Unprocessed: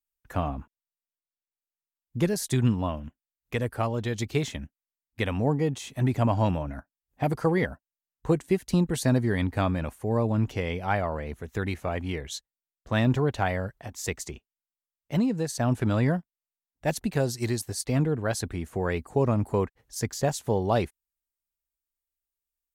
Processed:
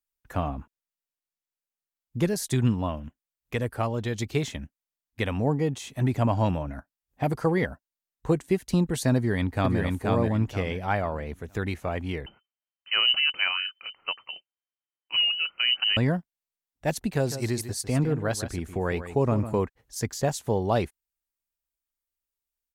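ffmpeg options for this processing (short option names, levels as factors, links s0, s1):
-filter_complex "[0:a]asplit=2[s0][s1];[s1]afade=t=in:st=9.16:d=0.01,afade=t=out:st=9.8:d=0.01,aecho=0:1:480|960|1440|1920:0.794328|0.238298|0.0714895|0.0214469[s2];[s0][s2]amix=inputs=2:normalize=0,asettb=1/sr,asplit=3[s3][s4][s5];[s3]atrim=end=12.264[s6];[s4]atrim=start=12.26:end=15.97,asetpts=PTS-STARTPTS,afade=t=in:d=0.004:c=qsin,afade=t=out:st=3.706:d=0.004:c=qsin,lowpass=f=2600:t=q:w=0.5098,lowpass=f=2600:t=q:w=0.6013,lowpass=f=2600:t=q:w=0.9,lowpass=f=2600:t=q:w=2.563,afreqshift=-3100[s7];[s5]atrim=start=15.966[s8];[s6][s7]acrossfade=d=0.004:c1=hsin:c2=qsin[s9];[s9][s8]acrossfade=d=0.004:c1=qsin:c2=hsin,asettb=1/sr,asplit=3[s10][s11][s12];[s10]atrim=end=17.104[s13];[s11]atrim=start=17.1:end=19.62,asetpts=PTS-STARTPTS,afade=t=in:d=0.004:c=qsin,afade=t=out:st=2.516:d=0.004:c=qsin,aecho=1:1:151:0.266,atrim=end_sample=111132[s14];[s12]atrim=start=19.616[s15];[s13][s14]acrossfade=d=0.004:c1=hsin:c2=qsin[s16];[s16][s15]acrossfade=d=0.004:c1=qsin:c2=hsin"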